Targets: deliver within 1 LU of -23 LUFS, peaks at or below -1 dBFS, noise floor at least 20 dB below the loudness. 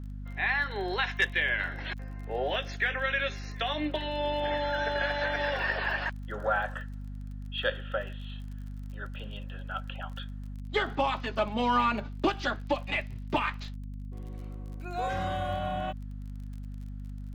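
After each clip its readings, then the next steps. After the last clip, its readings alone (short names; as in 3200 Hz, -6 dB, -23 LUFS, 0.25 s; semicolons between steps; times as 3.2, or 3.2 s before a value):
ticks 33/s; hum 50 Hz; harmonics up to 250 Hz; hum level -36 dBFS; loudness -31.0 LUFS; peak -13.5 dBFS; loudness target -23.0 LUFS
-> de-click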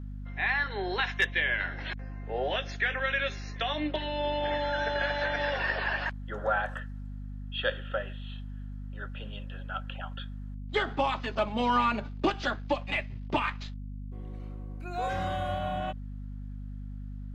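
ticks 0/s; hum 50 Hz; harmonics up to 250 Hz; hum level -36 dBFS
-> de-hum 50 Hz, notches 5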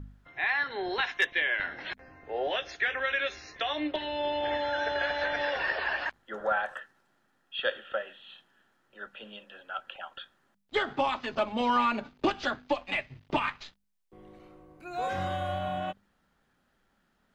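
hum none; loudness -31.0 LUFS; peak -14.0 dBFS; loudness target -23.0 LUFS
-> gain +8 dB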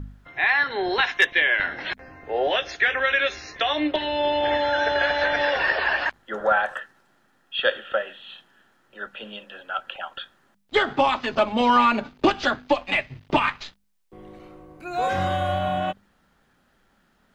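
loudness -23.0 LUFS; peak -6.0 dBFS; noise floor -64 dBFS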